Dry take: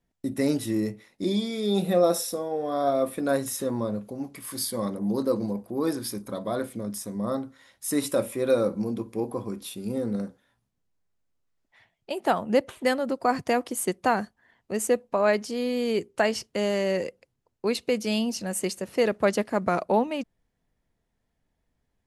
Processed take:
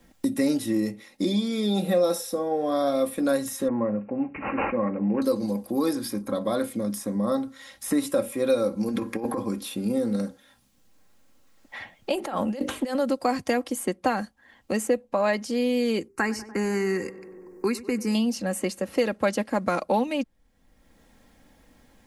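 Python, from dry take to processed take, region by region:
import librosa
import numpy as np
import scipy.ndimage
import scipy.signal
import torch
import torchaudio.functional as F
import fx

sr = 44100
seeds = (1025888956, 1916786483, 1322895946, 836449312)

y = fx.chain(x, sr, fx.resample_bad(factor=8, down='none', up='filtered'),
    fx.highpass(hz=56.0, slope=12), at=(3.68, 5.22))
y = fx.chain(y, sr, fx.peak_eq(hz=1700.0, db=15.0, octaves=0.83),
    fx.over_compress(threshold_db=-31.0, ratio=-0.5), at=(8.88, 9.38))
y = fx.chain(y, sr, fx.hum_notches(base_hz=50, count=9),
    fx.over_compress(threshold_db=-33.0, ratio=-1.0), at=(12.13, 12.95))
y = fx.chain(y, sr, fx.peak_eq(hz=390.0, db=14.0, octaves=0.26),
    fx.fixed_phaser(hz=1400.0, stages=4),
    fx.echo_tape(ms=95, feedback_pct=73, wet_db=-16.5, lp_hz=1900.0, drive_db=16.0, wow_cents=20), at=(16.08, 18.15))
y = y + 0.5 * np.pad(y, (int(3.7 * sr / 1000.0), 0))[:len(y)]
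y = fx.band_squash(y, sr, depth_pct=70)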